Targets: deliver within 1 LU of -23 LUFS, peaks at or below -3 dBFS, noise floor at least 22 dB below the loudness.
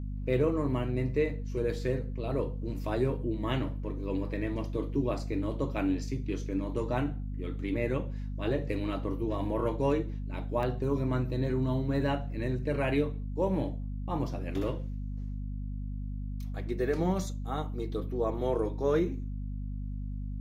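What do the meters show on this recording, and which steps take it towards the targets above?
dropouts 1; longest dropout 1.3 ms; hum 50 Hz; harmonics up to 250 Hz; hum level -33 dBFS; loudness -32.5 LUFS; peak -15.0 dBFS; loudness target -23.0 LUFS
-> interpolate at 10.63, 1.3 ms; de-hum 50 Hz, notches 5; gain +9.5 dB

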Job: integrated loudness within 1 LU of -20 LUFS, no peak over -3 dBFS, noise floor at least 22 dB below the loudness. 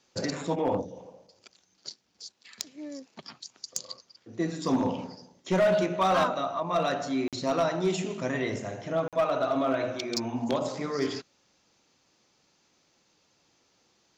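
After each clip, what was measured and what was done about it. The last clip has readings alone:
clipped 0.4%; flat tops at -18.5 dBFS; dropouts 2; longest dropout 47 ms; loudness -29.0 LUFS; peak -18.5 dBFS; loudness target -20.0 LUFS
-> clip repair -18.5 dBFS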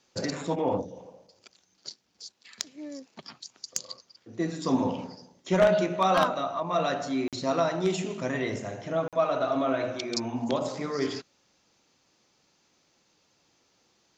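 clipped 0.0%; dropouts 2; longest dropout 47 ms
-> interpolate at 7.28/9.08, 47 ms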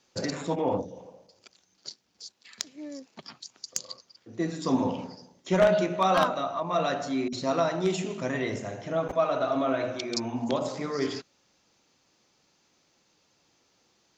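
dropouts 0; loudness -28.5 LUFS; peak -9.5 dBFS; loudness target -20.0 LUFS
-> gain +8.5 dB; limiter -3 dBFS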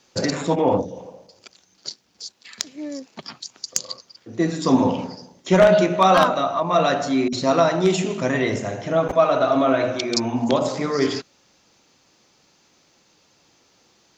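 loudness -20.0 LUFS; peak -3.0 dBFS; noise floor -60 dBFS

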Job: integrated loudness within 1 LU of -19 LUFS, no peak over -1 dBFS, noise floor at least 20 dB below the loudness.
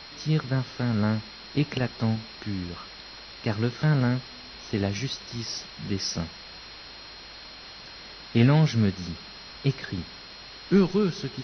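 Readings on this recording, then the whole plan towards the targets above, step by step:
steady tone 4200 Hz; tone level -46 dBFS; noise floor -44 dBFS; noise floor target -47 dBFS; loudness -27.0 LUFS; peak -7.5 dBFS; loudness target -19.0 LUFS
-> notch 4200 Hz, Q 30; denoiser 6 dB, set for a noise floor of -44 dBFS; gain +8 dB; limiter -1 dBFS

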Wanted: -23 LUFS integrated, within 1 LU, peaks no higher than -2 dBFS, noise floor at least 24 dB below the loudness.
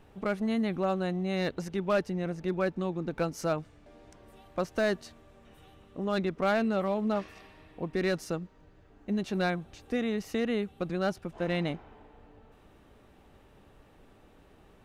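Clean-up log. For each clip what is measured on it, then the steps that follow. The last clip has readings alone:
clipped 0.4%; flat tops at -20.0 dBFS; loudness -31.5 LUFS; peak -20.0 dBFS; loudness target -23.0 LUFS
-> clip repair -20 dBFS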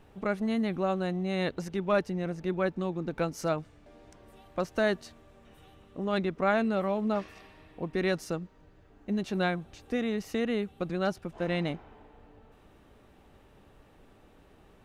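clipped 0.0%; loudness -31.0 LUFS; peak -14.5 dBFS; loudness target -23.0 LUFS
-> gain +8 dB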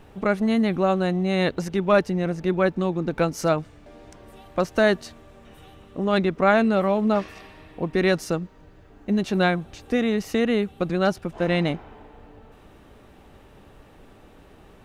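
loudness -23.0 LUFS; peak -6.5 dBFS; noise floor -51 dBFS

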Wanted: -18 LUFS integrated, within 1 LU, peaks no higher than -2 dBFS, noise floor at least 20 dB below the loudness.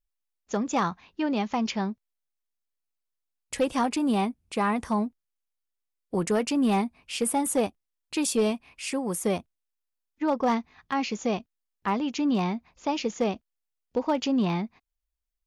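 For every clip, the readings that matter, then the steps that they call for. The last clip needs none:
clipped 0.3%; flat tops at -17.0 dBFS; loudness -28.0 LUFS; peak -17.0 dBFS; loudness target -18.0 LUFS
-> clip repair -17 dBFS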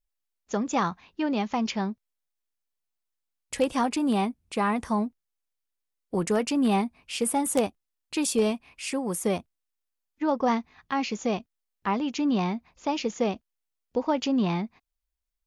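clipped 0.0%; loudness -28.0 LUFS; peak -8.0 dBFS; loudness target -18.0 LUFS
-> gain +10 dB; limiter -2 dBFS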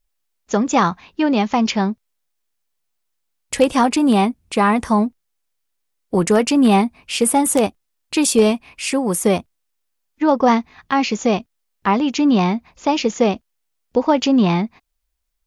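loudness -18.0 LUFS; peak -2.0 dBFS; noise floor -73 dBFS

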